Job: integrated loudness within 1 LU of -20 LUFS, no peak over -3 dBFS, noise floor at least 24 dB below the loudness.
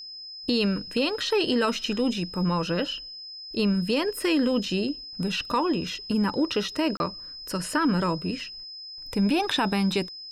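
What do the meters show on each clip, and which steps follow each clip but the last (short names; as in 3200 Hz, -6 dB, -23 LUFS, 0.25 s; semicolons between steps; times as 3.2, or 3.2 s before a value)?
dropouts 1; longest dropout 31 ms; steady tone 5100 Hz; tone level -38 dBFS; loudness -26.0 LUFS; peak -12.0 dBFS; loudness target -20.0 LUFS
-> interpolate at 6.97, 31 ms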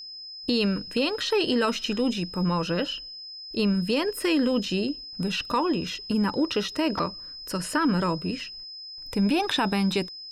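dropouts 0; steady tone 5100 Hz; tone level -38 dBFS
-> notch 5100 Hz, Q 30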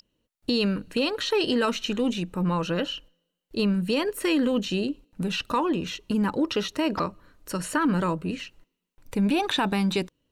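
steady tone none; loudness -26.5 LUFS; peak -12.5 dBFS; loudness target -20.0 LUFS
-> gain +6.5 dB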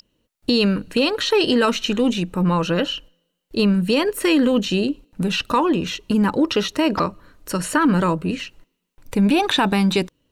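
loudness -20.0 LUFS; peak -6.0 dBFS; noise floor -76 dBFS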